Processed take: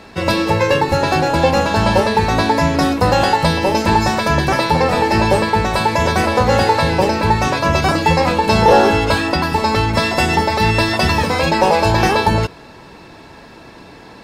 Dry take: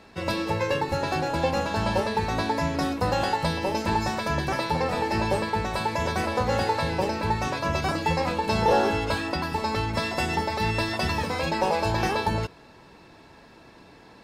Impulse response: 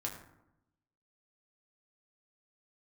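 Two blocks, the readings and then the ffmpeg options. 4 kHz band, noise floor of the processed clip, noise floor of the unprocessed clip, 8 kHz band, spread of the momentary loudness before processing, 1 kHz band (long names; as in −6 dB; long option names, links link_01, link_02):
+11.0 dB, −40 dBFS, −51 dBFS, +11.0 dB, 3 LU, +11.0 dB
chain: -af "acontrast=90,volume=4dB"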